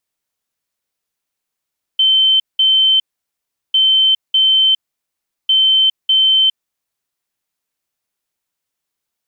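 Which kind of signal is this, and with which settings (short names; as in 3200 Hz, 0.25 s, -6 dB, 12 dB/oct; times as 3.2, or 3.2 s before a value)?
beep pattern sine 3090 Hz, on 0.41 s, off 0.19 s, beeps 2, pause 0.74 s, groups 3, -8.5 dBFS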